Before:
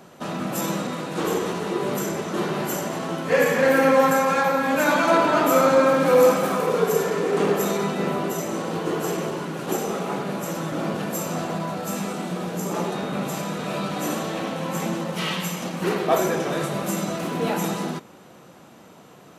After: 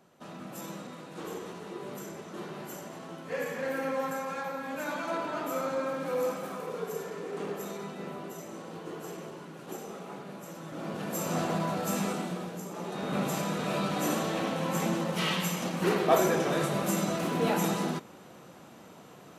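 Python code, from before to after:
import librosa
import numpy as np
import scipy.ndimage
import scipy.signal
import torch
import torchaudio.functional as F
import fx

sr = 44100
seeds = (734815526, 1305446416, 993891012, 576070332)

y = fx.gain(x, sr, db=fx.line((10.6, -15.0), (11.37, -2.5), (12.1, -2.5), (12.75, -14.0), (13.15, -3.0)))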